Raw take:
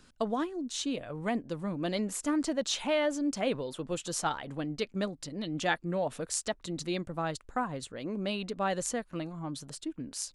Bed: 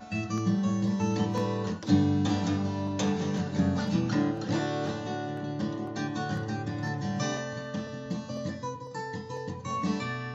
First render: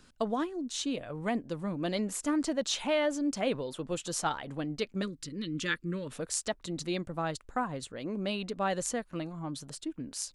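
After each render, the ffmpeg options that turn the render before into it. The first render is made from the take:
-filter_complex "[0:a]asettb=1/sr,asplit=3[s0][s1][s2];[s0]atrim=end=5.024[s3];[s1]atrim=start=5.02:end=6.11,asetpts=PTS-STARTPTS,afade=t=in:d=0.004:c=qsin,afade=t=out:st=1.086:d=0.004:c=qsin,asuperstop=centerf=730:order=4:qfactor=1[s4];[s2]atrim=start=6.106[s5];[s3][s4]acrossfade=d=0.004:c1=hsin:c2=qsin[s6];[s6][s5]acrossfade=d=0.004:c1=qsin:c2=hsin"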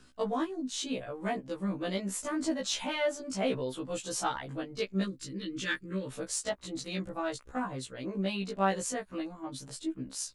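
-filter_complex "[0:a]asplit=2[s0][s1];[s1]asoftclip=type=hard:threshold=0.0562,volume=0.282[s2];[s0][s2]amix=inputs=2:normalize=0,afftfilt=real='re*1.73*eq(mod(b,3),0)':imag='im*1.73*eq(mod(b,3),0)':win_size=2048:overlap=0.75"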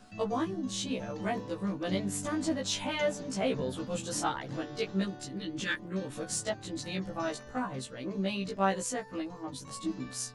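-filter_complex "[1:a]volume=0.188[s0];[0:a][s0]amix=inputs=2:normalize=0"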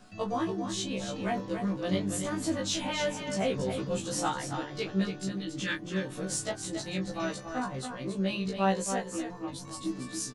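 -filter_complex "[0:a]asplit=2[s0][s1];[s1]adelay=21,volume=0.422[s2];[s0][s2]amix=inputs=2:normalize=0,aecho=1:1:279:0.422"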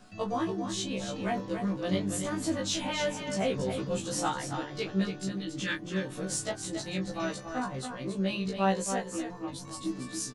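-af anull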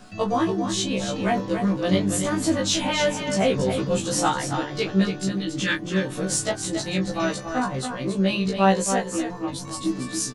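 -af "volume=2.66"

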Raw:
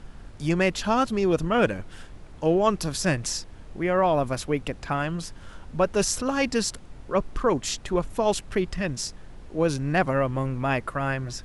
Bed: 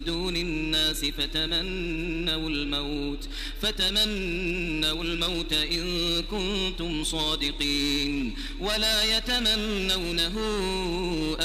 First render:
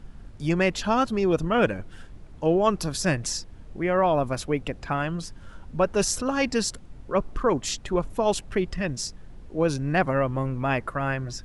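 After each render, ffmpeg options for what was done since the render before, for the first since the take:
-af "afftdn=nr=6:nf=-45"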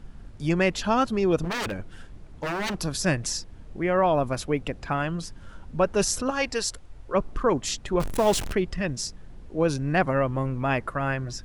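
-filter_complex "[0:a]asettb=1/sr,asplit=3[s0][s1][s2];[s0]atrim=end=1.434[s3];[s1]atrim=start=1.43:end=2.81,asetpts=PTS-STARTPTS,afade=t=in:d=0.004:c=qsin,afade=t=out:st=1.376:d=0.004:c=qsin,aeval=exprs='0.0668*(abs(mod(val(0)/0.0668+3,4)-2)-1)':c=same[s4];[s2]atrim=start=2.806[s5];[s3][s4]acrossfade=d=0.004:c1=hsin:c2=qsin[s6];[s6][s5]acrossfade=d=0.004:c1=qsin:c2=hsin,asettb=1/sr,asplit=3[s7][s8][s9];[s7]atrim=end=6.304[s10];[s8]atrim=start=6.3:end=7.14,asetpts=PTS-STARTPTS,afade=t=in:d=0.004:c=qsin,afade=t=out:st=0.836:d=0.004:c=qsin,equalizer=f=200:w=1.3:g=-13[s11];[s9]atrim=start=7.136[s12];[s10][s11]acrossfade=d=0.004:c1=hsin:c2=qsin[s13];[s13][s12]acrossfade=d=0.004:c1=qsin:c2=hsin,asettb=1/sr,asplit=3[s14][s15][s16];[s14]atrim=end=8.004[s17];[s15]atrim=start=8:end=8.53,asetpts=PTS-STARTPTS,afade=t=in:d=0.004:c=qsin,afade=t=out:st=0.526:d=0.004:c=qsin,aeval=exprs='val(0)+0.5*0.0473*sgn(val(0))':c=same[s18];[s16]atrim=start=8.526[s19];[s17][s18]acrossfade=d=0.004:c1=hsin:c2=qsin[s20];[s20][s19]acrossfade=d=0.004:c1=qsin:c2=hsin"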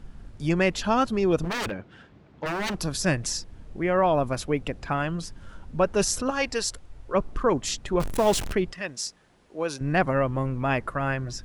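-filter_complex "[0:a]asettb=1/sr,asplit=3[s0][s1][s2];[s0]atrim=end=1.704[s3];[s1]atrim=start=1.7:end=2.46,asetpts=PTS-STARTPTS,afade=t=in:d=0.004:c=qsin,afade=t=out:st=0.756:d=0.004:c=qsin,highpass=130,lowpass=3800[s4];[s2]atrim=start=2.456[s5];[s3][s4]acrossfade=d=0.004:c1=hsin:c2=qsin[s6];[s6][s5]acrossfade=d=0.004:c1=qsin:c2=hsin,asettb=1/sr,asplit=3[s7][s8][s9];[s7]atrim=end=8.724[s10];[s8]atrim=start=8.72:end=9.81,asetpts=PTS-STARTPTS,afade=t=in:d=0.004:c=qsin,afade=t=out:st=1.086:d=0.004:c=qsin,highpass=f=730:p=1[s11];[s9]atrim=start=9.806[s12];[s10][s11]acrossfade=d=0.004:c1=hsin:c2=qsin[s13];[s13][s12]acrossfade=d=0.004:c1=qsin:c2=hsin"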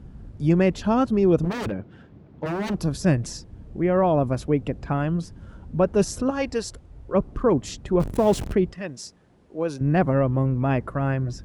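-af "highpass=47,tiltshelf=f=740:g=7"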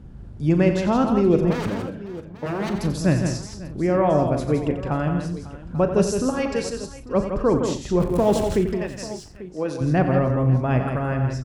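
-filter_complex "[0:a]asplit=2[s0][s1];[s1]adelay=39,volume=0.251[s2];[s0][s2]amix=inputs=2:normalize=0,aecho=1:1:90|166|183|244|547|842:0.316|0.473|0.126|0.141|0.126|0.15"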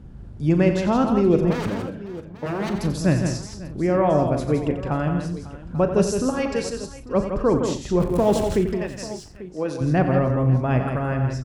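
-af anull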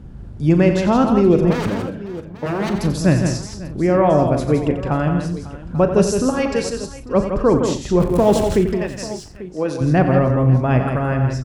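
-af "volume=1.68,alimiter=limit=0.794:level=0:latency=1"

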